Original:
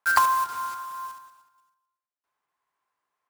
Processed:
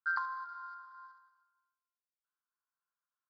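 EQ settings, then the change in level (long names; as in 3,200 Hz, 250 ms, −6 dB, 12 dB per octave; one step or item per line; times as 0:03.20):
pair of resonant band-passes 2,600 Hz, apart 1.7 octaves
high-frequency loss of the air 420 metres
−3.0 dB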